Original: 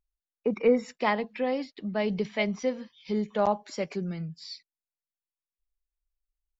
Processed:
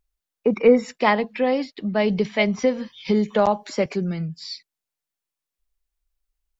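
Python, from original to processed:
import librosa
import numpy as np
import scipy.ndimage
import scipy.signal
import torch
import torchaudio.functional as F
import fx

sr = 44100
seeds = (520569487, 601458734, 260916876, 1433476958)

y = fx.band_squash(x, sr, depth_pct=70, at=(2.58, 3.86))
y = y * librosa.db_to_amplitude(7.5)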